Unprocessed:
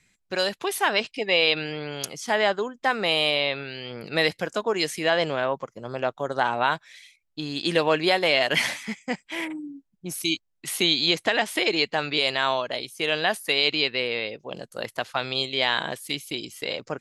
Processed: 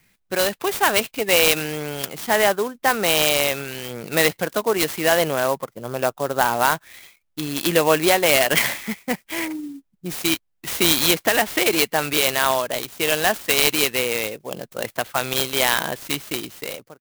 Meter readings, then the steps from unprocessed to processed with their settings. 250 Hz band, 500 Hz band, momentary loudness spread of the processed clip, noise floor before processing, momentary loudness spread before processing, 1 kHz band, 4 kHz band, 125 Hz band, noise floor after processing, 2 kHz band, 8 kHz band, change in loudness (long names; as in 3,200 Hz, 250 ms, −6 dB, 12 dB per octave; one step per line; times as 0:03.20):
+4.5 dB, +4.5 dB, 13 LU, −74 dBFS, 12 LU, +4.5 dB, +1.5 dB, +5.0 dB, −69 dBFS, +3.5 dB, +13.0 dB, +4.5 dB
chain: fade-out on the ending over 0.58 s
converter with an unsteady clock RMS 0.045 ms
level +4.5 dB